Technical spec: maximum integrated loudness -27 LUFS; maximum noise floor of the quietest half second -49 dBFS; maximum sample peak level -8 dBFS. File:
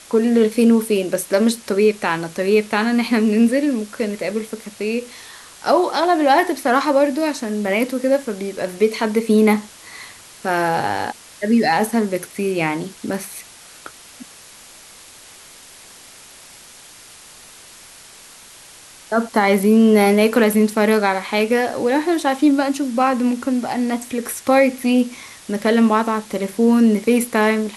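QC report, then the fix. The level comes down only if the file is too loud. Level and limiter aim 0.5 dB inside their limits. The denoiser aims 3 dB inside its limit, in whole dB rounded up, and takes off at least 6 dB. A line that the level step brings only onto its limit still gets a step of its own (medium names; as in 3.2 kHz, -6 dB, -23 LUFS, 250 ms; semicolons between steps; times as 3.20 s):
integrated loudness -18.0 LUFS: fail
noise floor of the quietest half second -43 dBFS: fail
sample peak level -3.5 dBFS: fail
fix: trim -9.5 dB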